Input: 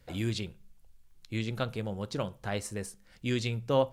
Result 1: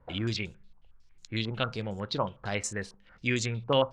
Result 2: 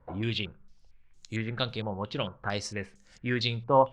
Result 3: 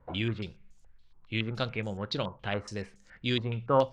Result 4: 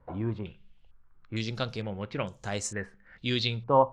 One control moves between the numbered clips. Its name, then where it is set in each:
stepped low-pass, rate: 11, 4.4, 7.1, 2.2 Hz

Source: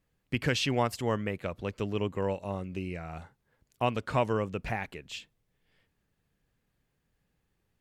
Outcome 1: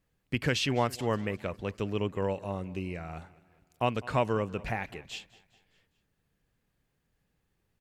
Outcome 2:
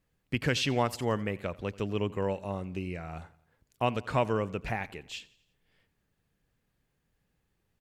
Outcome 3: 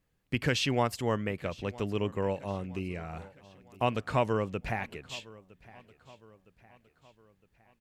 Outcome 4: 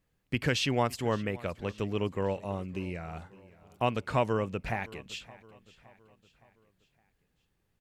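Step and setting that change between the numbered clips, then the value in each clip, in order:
feedback echo, time: 204, 87, 961, 566 ms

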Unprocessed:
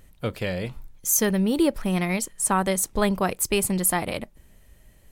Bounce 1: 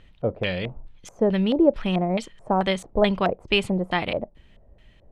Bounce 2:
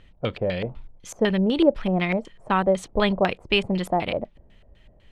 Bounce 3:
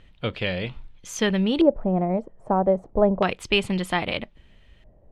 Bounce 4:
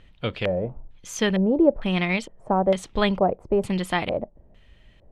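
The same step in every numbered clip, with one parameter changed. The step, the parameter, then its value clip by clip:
LFO low-pass, rate: 2.3, 4, 0.31, 1.1 Hz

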